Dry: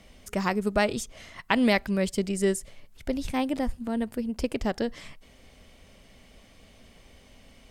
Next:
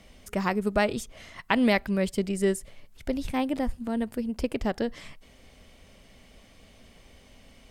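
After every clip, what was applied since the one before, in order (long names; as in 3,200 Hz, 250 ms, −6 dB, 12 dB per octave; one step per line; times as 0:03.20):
dynamic equaliser 6,400 Hz, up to −5 dB, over −49 dBFS, Q 0.98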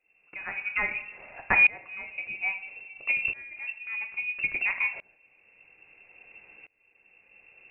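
coupled-rooms reverb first 0.55 s, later 2.6 s, from −20 dB, DRR 5 dB
voice inversion scrambler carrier 2,700 Hz
shaped tremolo saw up 0.6 Hz, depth 95%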